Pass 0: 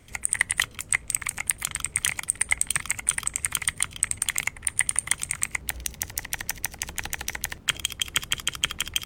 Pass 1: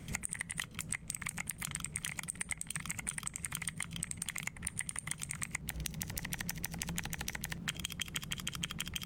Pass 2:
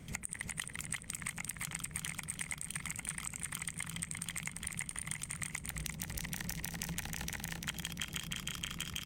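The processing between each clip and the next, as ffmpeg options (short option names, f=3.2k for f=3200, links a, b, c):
-af "alimiter=limit=-9.5dB:level=0:latency=1:release=48,equalizer=f=170:w=1.9:g=15,acompressor=threshold=-35dB:ratio=12,volume=1dB"
-af "aecho=1:1:345|690|1035|1380|1725|2070:0.631|0.284|0.128|0.0575|0.0259|0.0116,volume=-2.5dB"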